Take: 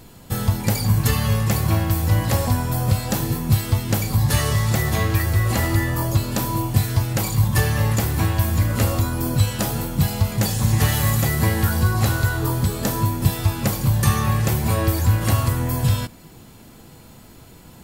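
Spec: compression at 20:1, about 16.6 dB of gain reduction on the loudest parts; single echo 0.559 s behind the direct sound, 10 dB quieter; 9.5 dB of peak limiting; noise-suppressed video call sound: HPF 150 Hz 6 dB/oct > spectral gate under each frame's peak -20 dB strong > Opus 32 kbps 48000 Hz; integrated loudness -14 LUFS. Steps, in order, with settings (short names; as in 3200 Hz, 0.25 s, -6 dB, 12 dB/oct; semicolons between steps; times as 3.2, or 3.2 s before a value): compressor 20:1, threshold -29 dBFS; limiter -27 dBFS; HPF 150 Hz 6 dB/oct; echo 0.559 s -10 dB; spectral gate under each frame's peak -20 dB strong; gain +26 dB; Opus 32 kbps 48000 Hz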